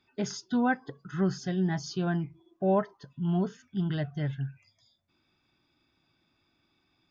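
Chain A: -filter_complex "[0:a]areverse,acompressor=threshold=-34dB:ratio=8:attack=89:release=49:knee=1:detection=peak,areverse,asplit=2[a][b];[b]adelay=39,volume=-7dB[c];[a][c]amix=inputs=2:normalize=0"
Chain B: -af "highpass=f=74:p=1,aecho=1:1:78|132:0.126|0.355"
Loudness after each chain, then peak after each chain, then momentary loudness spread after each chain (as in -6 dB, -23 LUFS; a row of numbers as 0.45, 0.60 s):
-34.0, -31.0 LUFS; -17.0, -14.5 dBFS; 7, 9 LU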